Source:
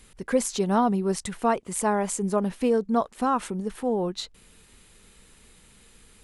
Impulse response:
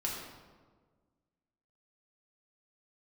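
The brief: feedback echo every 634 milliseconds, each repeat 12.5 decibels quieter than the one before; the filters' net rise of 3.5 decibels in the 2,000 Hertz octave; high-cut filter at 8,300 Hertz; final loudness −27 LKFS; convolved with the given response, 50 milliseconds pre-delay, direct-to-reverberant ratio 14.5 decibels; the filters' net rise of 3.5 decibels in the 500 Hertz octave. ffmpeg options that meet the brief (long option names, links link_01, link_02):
-filter_complex "[0:a]lowpass=8300,equalizer=frequency=500:width_type=o:gain=4,equalizer=frequency=2000:width_type=o:gain=4.5,aecho=1:1:634|1268|1902:0.237|0.0569|0.0137,asplit=2[link_01][link_02];[1:a]atrim=start_sample=2205,adelay=50[link_03];[link_02][link_03]afir=irnorm=-1:irlink=0,volume=-18dB[link_04];[link_01][link_04]amix=inputs=2:normalize=0,volume=-3.5dB"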